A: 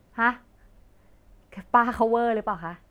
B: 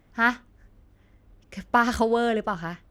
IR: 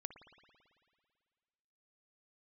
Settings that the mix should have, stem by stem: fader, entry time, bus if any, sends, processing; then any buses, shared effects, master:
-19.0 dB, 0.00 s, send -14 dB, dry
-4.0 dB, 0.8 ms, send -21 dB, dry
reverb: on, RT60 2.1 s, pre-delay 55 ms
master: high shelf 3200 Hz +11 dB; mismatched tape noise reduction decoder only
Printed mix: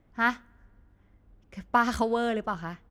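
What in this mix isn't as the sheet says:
stem A: send off; master: missing high shelf 3200 Hz +11 dB

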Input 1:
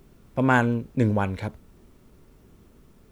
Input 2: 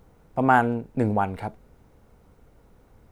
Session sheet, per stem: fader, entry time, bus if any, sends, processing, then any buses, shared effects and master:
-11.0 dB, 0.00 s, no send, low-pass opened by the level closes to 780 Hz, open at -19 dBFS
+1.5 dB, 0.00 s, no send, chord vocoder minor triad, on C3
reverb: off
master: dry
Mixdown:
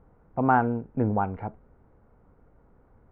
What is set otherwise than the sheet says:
stem 2: missing chord vocoder minor triad, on C3; master: extra ladder low-pass 2000 Hz, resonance 20%

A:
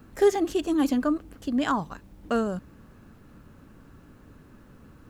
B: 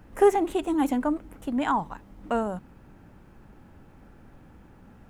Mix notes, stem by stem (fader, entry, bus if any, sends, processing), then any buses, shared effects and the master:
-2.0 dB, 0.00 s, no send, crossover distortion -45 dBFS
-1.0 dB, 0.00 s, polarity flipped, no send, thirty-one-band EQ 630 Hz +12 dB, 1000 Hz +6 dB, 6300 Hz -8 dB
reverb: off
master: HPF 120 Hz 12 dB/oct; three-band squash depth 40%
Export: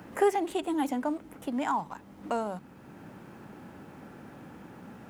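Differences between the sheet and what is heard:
stem A -2.0 dB -> -9.5 dB; stem B: missing thirty-one-band EQ 630 Hz +12 dB, 1000 Hz +6 dB, 6300 Hz -8 dB

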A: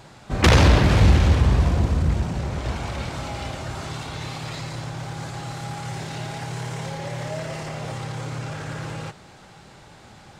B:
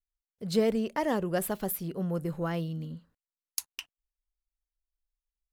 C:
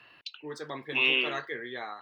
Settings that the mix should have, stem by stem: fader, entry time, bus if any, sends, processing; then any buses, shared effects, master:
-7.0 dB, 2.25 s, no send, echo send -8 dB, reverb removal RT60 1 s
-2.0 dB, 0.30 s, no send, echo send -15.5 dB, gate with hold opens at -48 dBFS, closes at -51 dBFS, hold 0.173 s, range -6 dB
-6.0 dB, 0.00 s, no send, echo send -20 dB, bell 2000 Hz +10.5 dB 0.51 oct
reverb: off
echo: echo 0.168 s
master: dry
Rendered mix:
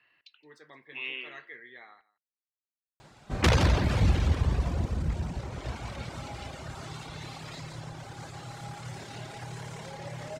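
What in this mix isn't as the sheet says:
stem A: entry 2.25 s -> 3.00 s; stem B: muted; stem C -6.0 dB -> -15.5 dB

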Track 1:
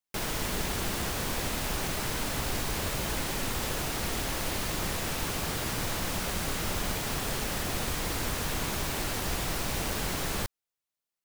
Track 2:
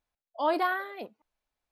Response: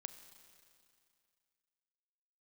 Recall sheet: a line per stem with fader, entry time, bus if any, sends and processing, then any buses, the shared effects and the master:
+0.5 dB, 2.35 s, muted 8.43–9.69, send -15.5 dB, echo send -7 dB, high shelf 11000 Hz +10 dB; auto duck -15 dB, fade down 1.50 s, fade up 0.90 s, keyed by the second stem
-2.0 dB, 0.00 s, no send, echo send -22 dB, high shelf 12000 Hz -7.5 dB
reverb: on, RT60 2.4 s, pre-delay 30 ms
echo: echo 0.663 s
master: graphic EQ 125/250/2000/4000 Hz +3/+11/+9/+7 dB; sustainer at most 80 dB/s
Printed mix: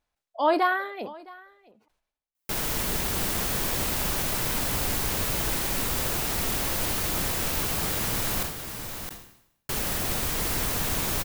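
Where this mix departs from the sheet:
stem 2 -2.0 dB -> +4.5 dB; master: missing graphic EQ 125/250/2000/4000 Hz +3/+11/+9/+7 dB

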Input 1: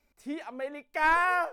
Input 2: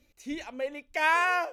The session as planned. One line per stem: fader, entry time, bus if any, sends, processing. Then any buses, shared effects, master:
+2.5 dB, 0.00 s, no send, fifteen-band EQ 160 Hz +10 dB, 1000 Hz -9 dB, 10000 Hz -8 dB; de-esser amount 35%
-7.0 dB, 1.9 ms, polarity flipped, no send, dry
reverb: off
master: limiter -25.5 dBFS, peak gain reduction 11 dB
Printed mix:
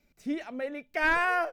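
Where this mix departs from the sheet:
stem 2 -7.0 dB -> -14.5 dB; master: missing limiter -25.5 dBFS, peak gain reduction 11 dB

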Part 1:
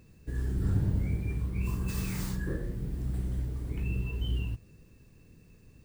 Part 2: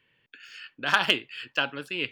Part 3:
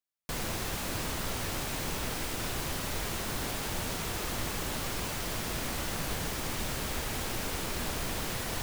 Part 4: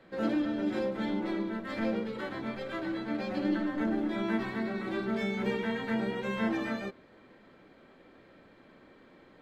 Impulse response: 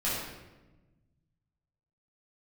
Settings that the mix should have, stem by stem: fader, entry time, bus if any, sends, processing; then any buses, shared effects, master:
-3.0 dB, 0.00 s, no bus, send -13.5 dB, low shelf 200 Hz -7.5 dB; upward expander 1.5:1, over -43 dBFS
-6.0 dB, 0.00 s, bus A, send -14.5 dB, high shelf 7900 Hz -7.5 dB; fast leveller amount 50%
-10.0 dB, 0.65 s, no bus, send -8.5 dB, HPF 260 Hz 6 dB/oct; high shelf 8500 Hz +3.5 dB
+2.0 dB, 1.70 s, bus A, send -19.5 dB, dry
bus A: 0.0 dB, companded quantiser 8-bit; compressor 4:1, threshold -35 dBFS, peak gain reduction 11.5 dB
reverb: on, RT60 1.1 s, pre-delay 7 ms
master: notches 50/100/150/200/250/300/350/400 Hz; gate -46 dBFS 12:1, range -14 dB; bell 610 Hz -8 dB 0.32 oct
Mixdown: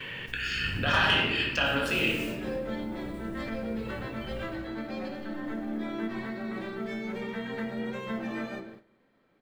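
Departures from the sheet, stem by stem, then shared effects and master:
stem 2 -6.0 dB -> +3.5 dB; stem 3: muted; master: missing bell 610 Hz -8 dB 0.32 oct

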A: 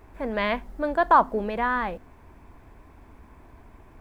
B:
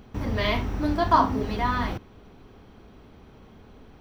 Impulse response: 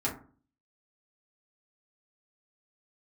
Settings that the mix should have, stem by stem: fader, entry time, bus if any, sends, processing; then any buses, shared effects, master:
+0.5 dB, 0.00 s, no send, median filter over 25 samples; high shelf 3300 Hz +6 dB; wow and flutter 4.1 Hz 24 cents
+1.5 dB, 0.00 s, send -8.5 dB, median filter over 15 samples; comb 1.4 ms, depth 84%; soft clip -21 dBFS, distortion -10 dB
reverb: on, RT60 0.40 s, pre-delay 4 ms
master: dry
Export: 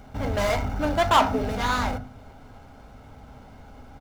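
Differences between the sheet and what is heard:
stem B: polarity flipped; master: extra low shelf 460 Hz -7 dB

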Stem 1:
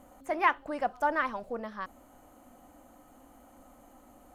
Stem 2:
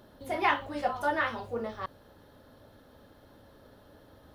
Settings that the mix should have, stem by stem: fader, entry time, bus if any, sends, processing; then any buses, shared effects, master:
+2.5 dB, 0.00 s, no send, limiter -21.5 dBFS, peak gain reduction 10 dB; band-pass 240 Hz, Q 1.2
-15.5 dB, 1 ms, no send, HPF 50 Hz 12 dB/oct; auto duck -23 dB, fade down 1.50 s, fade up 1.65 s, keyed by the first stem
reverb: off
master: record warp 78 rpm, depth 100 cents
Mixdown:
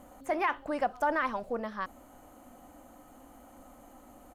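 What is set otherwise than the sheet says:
stem 1: missing band-pass 240 Hz, Q 1.2; master: missing record warp 78 rpm, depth 100 cents

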